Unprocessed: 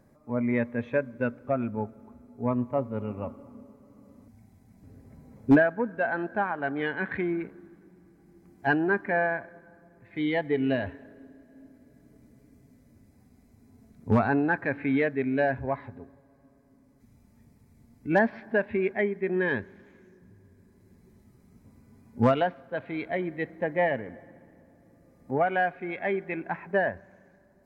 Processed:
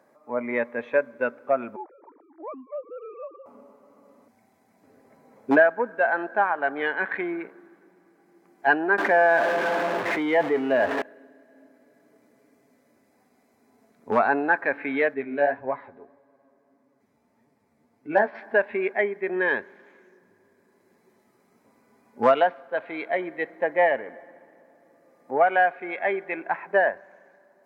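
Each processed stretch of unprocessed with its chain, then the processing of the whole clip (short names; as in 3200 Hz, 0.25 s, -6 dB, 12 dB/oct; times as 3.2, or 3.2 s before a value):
1.76–3.46 sine-wave speech + compressor 3:1, threshold -40 dBFS
8.98–11.02 zero-crossing step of -36 dBFS + LPF 1600 Hz 6 dB/oct + fast leveller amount 70%
15.14–18.35 tilt -1.5 dB/oct + flange 1.7 Hz, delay 6.4 ms, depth 7.8 ms, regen +29%
whole clip: HPF 550 Hz 12 dB/oct; high shelf 2700 Hz -9 dB; gain +8 dB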